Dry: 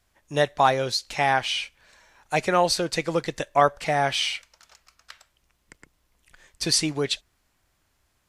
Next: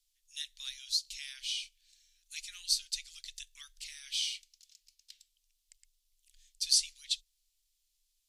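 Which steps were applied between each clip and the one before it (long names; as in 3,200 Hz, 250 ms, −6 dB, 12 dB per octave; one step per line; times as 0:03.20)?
inverse Chebyshev band-stop filter 140–710 Hz, stop band 80 dB
level −4 dB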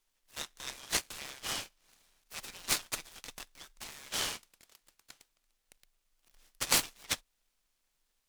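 short delay modulated by noise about 2,000 Hz, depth 0.055 ms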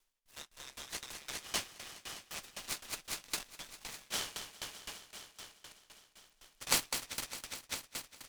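echo machine with several playback heads 203 ms, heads all three, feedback 59%, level −11.5 dB
tremolo with a ramp in dB decaying 3.9 Hz, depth 20 dB
level +3 dB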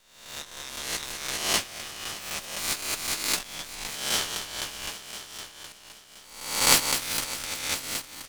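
peak hold with a rise ahead of every peak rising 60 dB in 0.77 s
level +8 dB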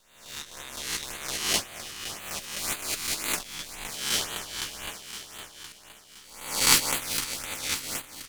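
auto-filter notch sine 1.9 Hz 580–5,600 Hz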